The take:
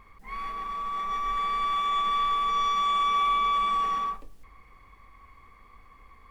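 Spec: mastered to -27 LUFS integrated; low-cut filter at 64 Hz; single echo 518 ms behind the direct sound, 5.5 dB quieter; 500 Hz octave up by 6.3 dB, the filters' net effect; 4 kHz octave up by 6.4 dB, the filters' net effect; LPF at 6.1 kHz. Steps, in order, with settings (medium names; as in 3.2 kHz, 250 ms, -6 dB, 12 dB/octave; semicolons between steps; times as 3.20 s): high-pass 64 Hz; low-pass 6.1 kHz; peaking EQ 500 Hz +7.5 dB; peaking EQ 4 kHz +8 dB; delay 518 ms -5.5 dB; trim -3.5 dB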